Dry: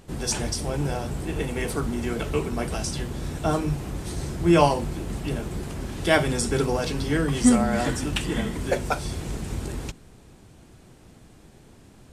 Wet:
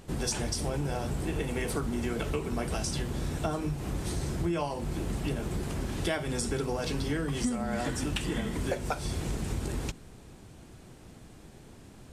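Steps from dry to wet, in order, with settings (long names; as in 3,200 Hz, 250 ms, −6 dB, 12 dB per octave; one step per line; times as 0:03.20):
downward compressor 12 to 1, threshold −27 dBFS, peak gain reduction 15.5 dB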